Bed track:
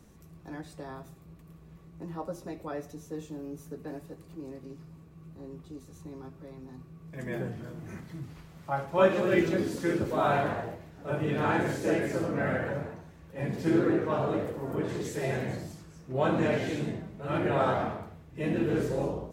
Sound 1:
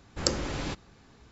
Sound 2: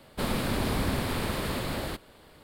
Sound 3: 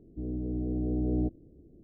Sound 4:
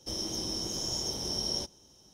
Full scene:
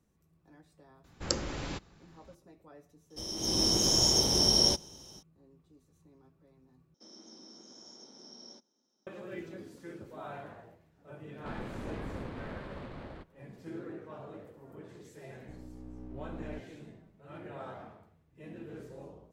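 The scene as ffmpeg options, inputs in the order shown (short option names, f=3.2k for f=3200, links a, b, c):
-filter_complex "[4:a]asplit=2[a][b];[0:a]volume=-17.5dB[c];[a]dynaudnorm=f=260:g=3:m=15dB[d];[b]highpass=f=200:w=0.5412,highpass=f=200:w=1.3066,equalizer=f=240:t=q:w=4:g=8,equalizer=f=1.4k:t=q:w=4:g=6,equalizer=f=2.9k:t=q:w=4:g=-9,lowpass=f=6.1k:w=0.5412,lowpass=f=6.1k:w=1.3066[e];[2:a]adynamicsmooth=sensitivity=2:basefreq=1.7k[f];[3:a]aeval=exprs='if(lt(val(0),0),0.251*val(0),val(0))':c=same[g];[c]asplit=2[h][i];[h]atrim=end=6.944[j];[e]atrim=end=2.13,asetpts=PTS-STARTPTS,volume=-17.5dB[k];[i]atrim=start=9.066[l];[1:a]atrim=end=1.31,asetpts=PTS-STARTPTS,volume=-4.5dB,afade=t=in:d=0.004:c=hsin,afade=t=out:st=1.306:d=0.004:c=hsin,adelay=1040[m];[d]atrim=end=2.13,asetpts=PTS-STARTPTS,volume=-6.5dB,afade=t=in:d=0.004:c=hsin,afade=t=out:st=2.126:d=0.004:c=hsin,adelay=3100[n];[f]atrim=end=2.43,asetpts=PTS-STARTPTS,volume=-12dB,afade=t=in:d=0.004:c=hsin,afade=t=out:st=2.426:d=0.004:c=hsin,adelay=11270[o];[g]atrim=end=1.83,asetpts=PTS-STARTPTS,volume=-11.5dB,afade=t=in:d=0.004:c=hsin,afade=t=out:st=1.826:d=0.004:c=hsin,adelay=15310[p];[j][k]acrossfade=d=0.004:c1=hsin:c2=hsin[q];[q][l]acrossfade=d=0.004:c1=hsin:c2=hsin[r];[r][m][n][o][p]amix=inputs=5:normalize=0"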